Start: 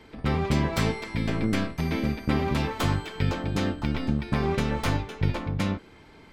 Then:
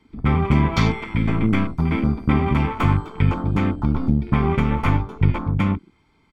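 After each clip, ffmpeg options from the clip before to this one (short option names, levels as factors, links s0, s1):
-af "afwtdn=0.0158,aecho=1:1:0.9:0.49,volume=1.78"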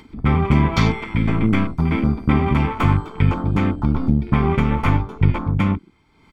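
-af "acompressor=mode=upward:threshold=0.0112:ratio=2.5,volume=1.19"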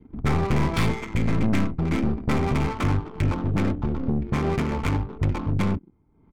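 -af "adynamicequalizer=threshold=0.0126:dfrequency=980:dqfactor=1:tfrequency=980:tqfactor=1:attack=5:release=100:ratio=0.375:range=2:mode=cutabove:tftype=bell,aeval=exprs='(tanh(7.08*val(0)+0.45)-tanh(0.45))/7.08':c=same,adynamicsmooth=sensitivity=5:basefreq=530"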